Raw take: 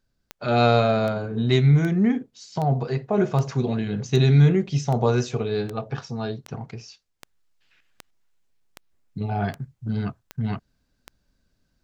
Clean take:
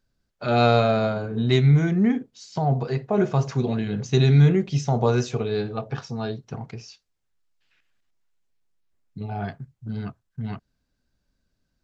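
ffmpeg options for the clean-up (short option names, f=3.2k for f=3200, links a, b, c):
-af "adeclick=t=4,asetnsamples=n=441:p=0,asendcmd='7.2 volume volume -4.5dB',volume=0dB"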